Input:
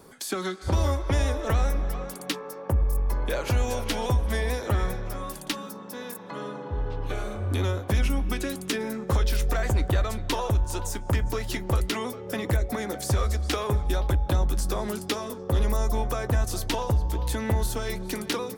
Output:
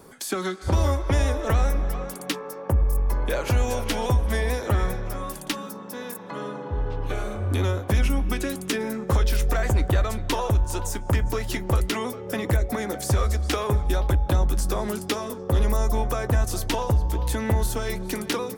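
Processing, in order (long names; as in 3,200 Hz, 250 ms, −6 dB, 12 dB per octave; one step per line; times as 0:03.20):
parametric band 4,100 Hz −2.5 dB
level +2.5 dB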